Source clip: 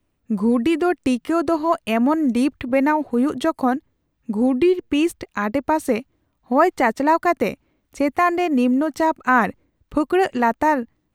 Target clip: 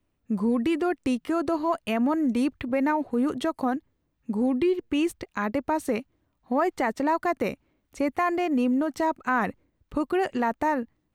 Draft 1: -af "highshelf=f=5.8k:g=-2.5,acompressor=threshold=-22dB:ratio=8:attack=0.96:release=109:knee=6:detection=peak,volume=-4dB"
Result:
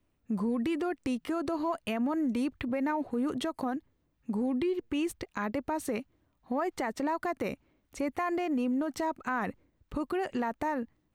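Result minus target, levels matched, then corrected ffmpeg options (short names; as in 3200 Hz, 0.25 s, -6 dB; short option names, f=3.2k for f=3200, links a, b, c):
compressor: peak gain reduction +8 dB
-af "highshelf=f=5.8k:g=-2.5,acompressor=threshold=-13dB:ratio=8:attack=0.96:release=109:knee=6:detection=peak,volume=-4dB"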